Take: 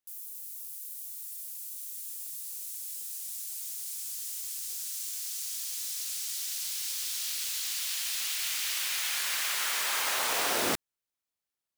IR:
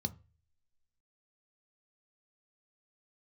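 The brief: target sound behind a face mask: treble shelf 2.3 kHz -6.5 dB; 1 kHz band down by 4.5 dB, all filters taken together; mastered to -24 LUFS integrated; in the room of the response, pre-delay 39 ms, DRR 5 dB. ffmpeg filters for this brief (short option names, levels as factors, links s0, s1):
-filter_complex "[0:a]equalizer=f=1000:t=o:g=-4.5,asplit=2[s0][s1];[1:a]atrim=start_sample=2205,adelay=39[s2];[s1][s2]afir=irnorm=-1:irlink=0,volume=0.562[s3];[s0][s3]amix=inputs=2:normalize=0,highshelf=f=2300:g=-6.5,volume=3.76"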